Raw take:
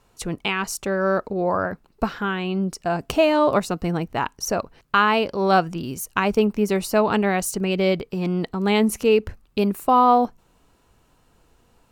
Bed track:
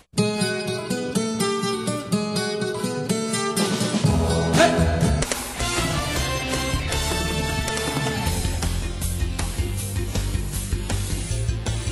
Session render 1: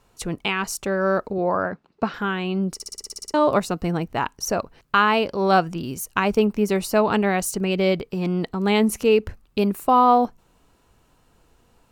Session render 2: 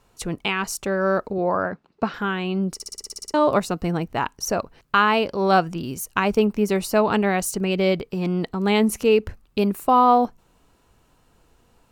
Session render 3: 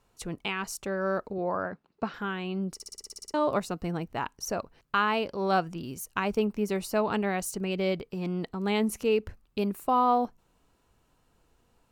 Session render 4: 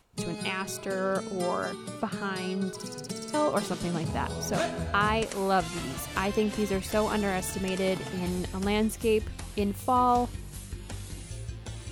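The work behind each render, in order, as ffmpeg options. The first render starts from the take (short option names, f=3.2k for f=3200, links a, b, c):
-filter_complex "[0:a]asettb=1/sr,asplit=3[a][b][c];[a]atrim=end=1.384[d];[b]atrim=start=1.38:end=2.14,asetpts=PTS-STARTPTS,afade=t=in:d=0.004:c=qsin,afade=t=out:st=0.756:d=0.004:c=qsin,highpass=120,lowpass=4.7k[e];[c]atrim=start=2.136[f];[d][e]acrossfade=d=0.004:c1=hsin:c2=qsin[g];[g][f]acrossfade=d=0.004:c1=qsin:c2=hsin,asplit=11[h][i][j][k][l][m][n][o][p][q][r];[h]atrim=end=2.802[s];[i]atrim=start=2.738:end=2.802[t];[j]atrim=start=2.738:end=2.802[u];[k]atrim=start=2.738:end=2.802[v];[l]atrim=start=2.738:end=2.802[w];[m]atrim=start=2.738:end=2.802[x];[n]atrim=start=2.738:end=2.802[y];[o]atrim=start=2.738:end=2.802[z];[p]atrim=start=2.738:end=2.802[aa];[q]atrim=start=2.738:end=2.802[ab];[r]atrim=start=3.338[ac];[s][t]acrossfade=d=0.004:c1=hsin:c2=hsin[ad];[ad][u]acrossfade=d=0.004:c1=hsin:c2=hsin[ae];[ae][v]acrossfade=d=0.004:c1=hsin:c2=hsin[af];[af][w]acrossfade=d=0.004:c1=hsin:c2=hsin[ag];[ag][x]acrossfade=d=0.004:c1=hsin:c2=hsin[ah];[ah][y]acrossfade=d=0.004:c1=hsin:c2=hsin[ai];[ai][z]acrossfade=d=0.004:c1=hsin:c2=hsin[aj];[aj][aa]acrossfade=d=0.004:c1=hsin:c2=hsin[ak];[ak][ab]acrossfade=d=0.004:c1=hsin:c2=hsin[al];[al][ac]acrossfade=d=0.004:c1=hsin:c2=hsin"
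-af anull
-af "volume=-8dB"
-filter_complex "[1:a]volume=-14dB[a];[0:a][a]amix=inputs=2:normalize=0"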